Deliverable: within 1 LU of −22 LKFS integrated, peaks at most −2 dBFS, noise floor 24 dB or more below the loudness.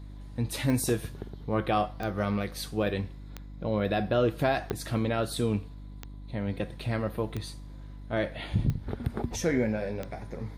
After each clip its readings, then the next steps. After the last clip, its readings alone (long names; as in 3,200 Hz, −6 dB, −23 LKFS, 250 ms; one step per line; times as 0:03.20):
number of clicks 8; mains hum 50 Hz; hum harmonics up to 300 Hz; level of the hum −40 dBFS; integrated loudness −30.5 LKFS; sample peak −13.0 dBFS; target loudness −22.0 LKFS
→ click removal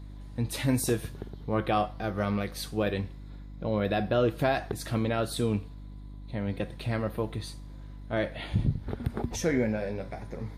number of clicks 0; mains hum 50 Hz; hum harmonics up to 300 Hz; level of the hum −40 dBFS
→ hum removal 50 Hz, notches 6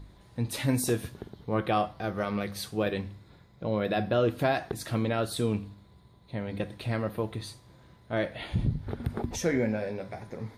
mains hum none found; integrated loudness −31.0 LKFS; sample peak −13.0 dBFS; target loudness −22.0 LKFS
→ level +9 dB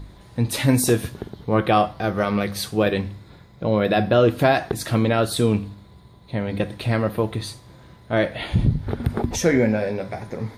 integrated loudness −22.0 LKFS; sample peak −4.0 dBFS; background noise floor −48 dBFS